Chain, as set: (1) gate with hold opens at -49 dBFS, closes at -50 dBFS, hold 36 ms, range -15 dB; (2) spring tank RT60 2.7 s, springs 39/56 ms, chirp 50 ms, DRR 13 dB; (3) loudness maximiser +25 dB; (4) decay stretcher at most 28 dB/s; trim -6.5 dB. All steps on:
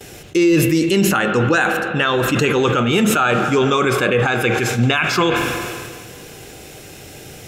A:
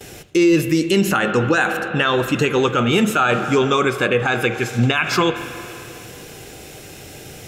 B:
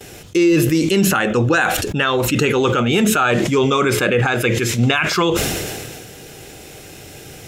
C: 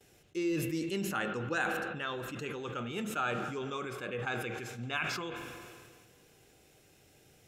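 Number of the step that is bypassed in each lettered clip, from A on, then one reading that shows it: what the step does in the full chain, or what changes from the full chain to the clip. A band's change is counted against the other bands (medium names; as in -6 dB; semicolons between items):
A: 4, crest factor change -2.0 dB; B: 2, momentary loudness spread change -7 LU; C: 3, crest factor change +4.0 dB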